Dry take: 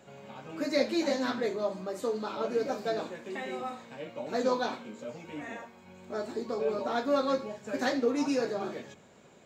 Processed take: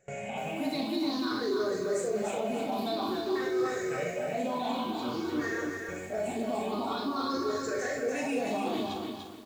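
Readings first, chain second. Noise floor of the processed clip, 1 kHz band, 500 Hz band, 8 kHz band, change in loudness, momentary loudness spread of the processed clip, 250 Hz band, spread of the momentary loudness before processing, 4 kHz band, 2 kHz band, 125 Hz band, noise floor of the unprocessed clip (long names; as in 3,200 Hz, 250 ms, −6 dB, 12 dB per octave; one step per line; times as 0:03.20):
−39 dBFS, +2.0 dB, −0.5 dB, +4.0 dB, 0.0 dB, 4 LU, +1.5 dB, 14 LU, +2.5 dB, +2.0 dB, +4.0 dB, −56 dBFS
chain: rippled gain that drifts along the octave scale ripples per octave 0.53, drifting +0.51 Hz, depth 18 dB
noise gate with hold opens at −40 dBFS
bass and treble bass +3 dB, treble +2 dB
comb filter 2.7 ms, depth 36%
reversed playback
downward compressor, threshold −32 dBFS, peak gain reduction 14 dB
reversed playback
brickwall limiter −31.5 dBFS, peak gain reduction 10 dB
on a send: ambience of single reflections 40 ms −7 dB, 62 ms −10.5 dB
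on the sum: feedback echo at a low word length 294 ms, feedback 35%, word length 10 bits, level −4 dB
level +5.5 dB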